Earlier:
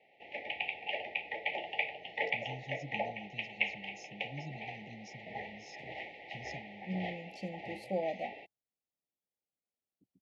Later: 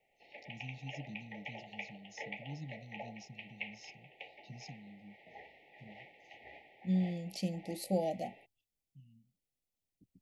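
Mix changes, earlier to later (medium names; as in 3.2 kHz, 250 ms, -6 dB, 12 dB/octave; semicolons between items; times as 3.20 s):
first voice: entry -1.85 s; second voice: remove band-pass filter 740 Hz, Q 0.54; background -10.5 dB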